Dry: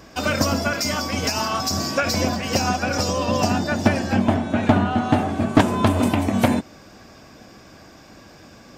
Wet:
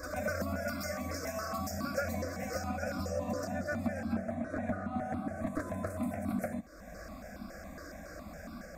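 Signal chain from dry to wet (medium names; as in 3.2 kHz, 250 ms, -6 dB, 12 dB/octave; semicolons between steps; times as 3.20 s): bass shelf 380 Hz +5.5 dB; compression 2.5:1, threshold -38 dBFS, peak gain reduction 20.5 dB; static phaser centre 600 Hz, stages 8; reverse echo 129 ms -3.5 dB; stepped phaser 7.2 Hz 810–1800 Hz; trim +2.5 dB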